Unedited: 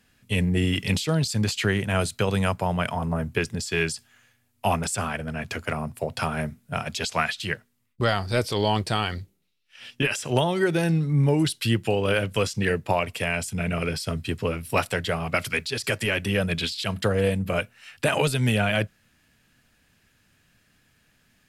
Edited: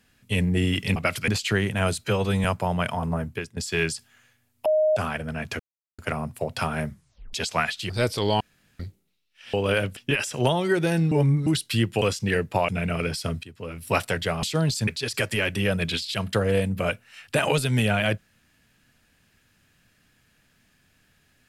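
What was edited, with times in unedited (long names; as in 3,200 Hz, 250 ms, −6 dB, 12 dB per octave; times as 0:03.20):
0:00.96–0:01.41: swap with 0:15.25–0:15.57
0:02.17–0:02.44: time-stretch 1.5×
0:03.13–0:03.56: fade out, to −18.5 dB
0:04.65–0:04.96: beep over 620 Hz −17 dBFS
0:05.59: splice in silence 0.39 s
0:06.49: tape stop 0.45 s
0:07.50–0:08.24: remove
0:08.75–0:09.14: fill with room tone
0:11.03–0:11.38: reverse
0:11.93–0:12.36: move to 0:09.88
0:13.03–0:13.51: remove
0:14.26–0:14.71: fade in quadratic, from −17 dB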